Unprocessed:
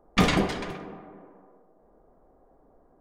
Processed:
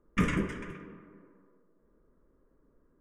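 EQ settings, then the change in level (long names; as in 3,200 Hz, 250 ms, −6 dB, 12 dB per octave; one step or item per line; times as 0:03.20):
low-pass filter 9,800 Hz 12 dB per octave
dynamic equaliser 3,500 Hz, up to −4 dB, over −44 dBFS, Q 1
phaser with its sweep stopped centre 1,800 Hz, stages 4
−4.0 dB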